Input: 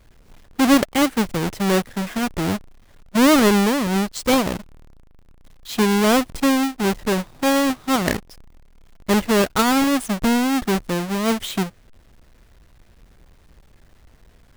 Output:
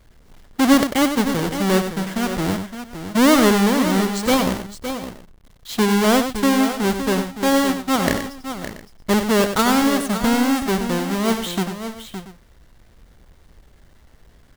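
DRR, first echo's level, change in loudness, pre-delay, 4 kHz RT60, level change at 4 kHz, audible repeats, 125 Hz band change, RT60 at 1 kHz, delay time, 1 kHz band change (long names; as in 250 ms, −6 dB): no reverb audible, −8.5 dB, +0.5 dB, no reverb audible, no reverb audible, +1.0 dB, 3, +1.0 dB, no reverb audible, 95 ms, +1.0 dB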